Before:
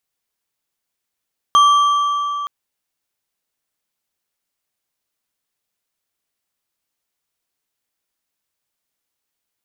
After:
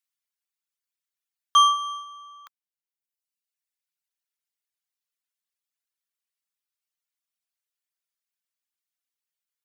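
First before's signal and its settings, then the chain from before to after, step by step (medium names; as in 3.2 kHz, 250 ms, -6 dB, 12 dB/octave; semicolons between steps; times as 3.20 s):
metal hit bar, length 0.92 s, lowest mode 1.16 kHz, modes 5, decay 3.62 s, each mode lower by 10.5 dB, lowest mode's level -7 dB
gate -17 dBFS, range -7 dB; reverb removal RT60 1.6 s; high-pass 1.3 kHz 12 dB/octave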